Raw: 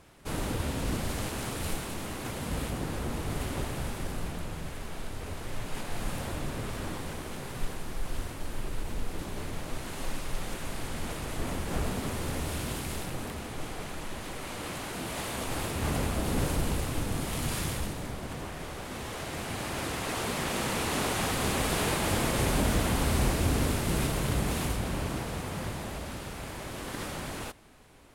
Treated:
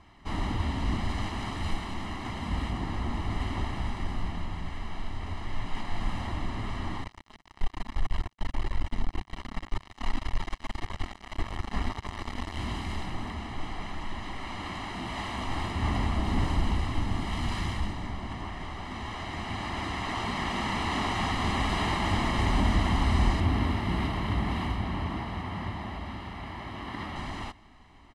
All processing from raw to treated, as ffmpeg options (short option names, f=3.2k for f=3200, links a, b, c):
-filter_complex "[0:a]asettb=1/sr,asplit=3[a][b][c];[a]atrim=end=7.044[d];[b]atrim=start=7.04:end=12.58,asetpts=PTS-STARTPTS,afade=t=in:d=0.004:c=qsin,afade=t=out:st=5.536:d=0.004:c=qsin,flanger=delay=1.7:depth=3.1:regen=-1:speed=1.8:shape=triangular,acrusher=bits=4:mix=0:aa=0.5,asoftclip=type=hard:threshold=-22dB[e];[c]atrim=start=12.576[f];[d][e]acrossfade=d=0.004:c1=hsin:c2=qsin[g];[g][f]acrossfade=d=0.004:c1=qsin:c2=hsin,asettb=1/sr,asplit=3[h][i][j];[h]atrim=end=23.404[k];[i]atrim=start=23.4:end=27.16,asetpts=PTS-STARTPTS,afade=t=in:d=0.004:c=qsin,afade=t=out:st=3.756:d=0.004:c=qsin,highpass=58,equalizer=f=7.1k:t=o:w=1.1:g=-9[l];[j]atrim=start=27.156[m];[k][l]acrossfade=d=0.004:c1=hsin:c2=qsin[n];[n][m]acrossfade=d=0.004:c1=qsin:c2=hsin,lowpass=3.8k,equalizer=f=140:t=o:w=0.26:g=-13,aecho=1:1:1:0.74"